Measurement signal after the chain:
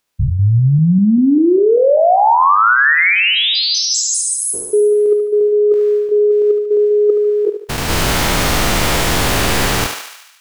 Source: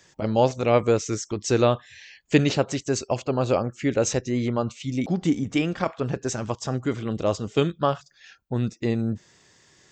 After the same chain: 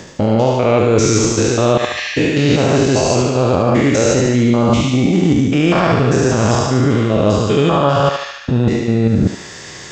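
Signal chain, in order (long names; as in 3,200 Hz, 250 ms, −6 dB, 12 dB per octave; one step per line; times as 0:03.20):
spectrum averaged block by block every 200 ms
high-shelf EQ 7,500 Hz −6.5 dB
reversed playback
downward compressor 12 to 1, threshold −35 dBFS
reversed playback
feedback echo with a high-pass in the loop 73 ms, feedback 64%, high-pass 600 Hz, level −4 dB
boost into a limiter +27 dB
level −1.5 dB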